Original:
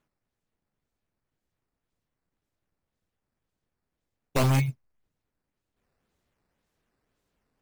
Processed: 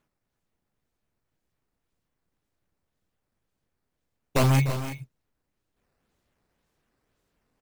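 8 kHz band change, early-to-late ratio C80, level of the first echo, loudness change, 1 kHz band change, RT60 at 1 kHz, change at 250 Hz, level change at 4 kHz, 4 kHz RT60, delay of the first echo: +2.5 dB, none, -13.5 dB, +1.5 dB, +2.5 dB, none, +2.5 dB, +2.5 dB, none, 0.298 s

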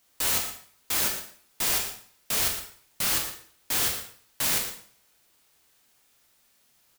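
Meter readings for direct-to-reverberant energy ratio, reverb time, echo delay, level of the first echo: 1.0 dB, 0.50 s, 0.116 s, -11.5 dB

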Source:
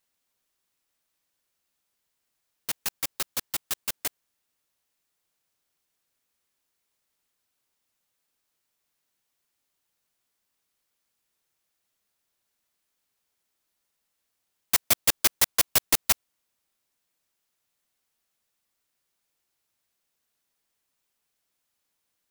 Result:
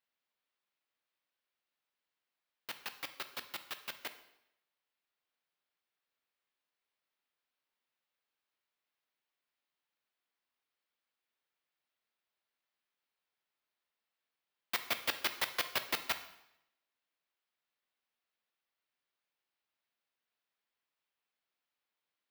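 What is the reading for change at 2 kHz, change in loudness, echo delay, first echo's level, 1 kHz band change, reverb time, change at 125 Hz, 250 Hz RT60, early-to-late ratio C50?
-5.5 dB, -13.0 dB, none, none, -6.0 dB, 0.80 s, -16.0 dB, 0.80 s, 12.0 dB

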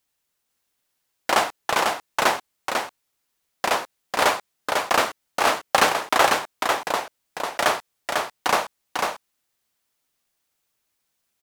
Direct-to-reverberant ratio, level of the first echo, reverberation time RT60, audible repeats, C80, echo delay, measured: none, -4.0 dB, none, 1, none, 0.497 s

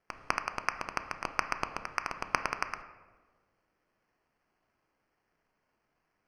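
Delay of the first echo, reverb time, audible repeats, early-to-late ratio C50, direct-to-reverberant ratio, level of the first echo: none, 1.4 s, none, 10.5 dB, 8.0 dB, none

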